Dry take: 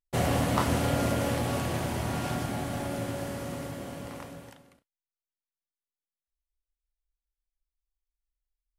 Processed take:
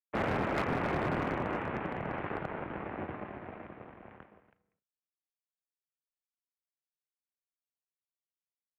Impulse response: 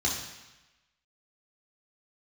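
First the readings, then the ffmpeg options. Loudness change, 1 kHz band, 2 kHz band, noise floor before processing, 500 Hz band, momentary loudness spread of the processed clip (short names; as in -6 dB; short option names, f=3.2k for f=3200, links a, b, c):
-4.5 dB, -3.0 dB, -1.0 dB, under -85 dBFS, -4.0 dB, 17 LU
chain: -af "aeval=exprs='0.316*(cos(1*acos(clip(val(0)/0.316,-1,1)))-cos(1*PI/2))+0.0891*(cos(3*acos(clip(val(0)/0.316,-1,1)))-cos(3*PI/2))+0.01*(cos(4*acos(clip(val(0)/0.316,-1,1)))-cos(4*PI/2))+0.00398*(cos(7*acos(clip(val(0)/0.316,-1,1)))-cos(7*PI/2))+0.0562*(cos(8*acos(clip(val(0)/0.316,-1,1)))-cos(8*PI/2))':c=same,highpass=f=150:t=q:w=0.5412,highpass=f=150:t=q:w=1.307,lowpass=f=2.5k:t=q:w=0.5176,lowpass=f=2.5k:t=q:w=0.7071,lowpass=f=2.5k:t=q:w=1.932,afreqshift=-75,asoftclip=type=hard:threshold=-26dB"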